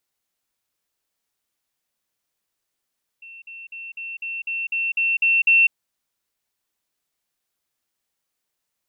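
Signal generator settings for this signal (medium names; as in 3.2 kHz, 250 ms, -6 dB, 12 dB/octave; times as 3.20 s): level ladder 2.7 kHz -38.5 dBFS, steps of 3 dB, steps 10, 0.20 s 0.05 s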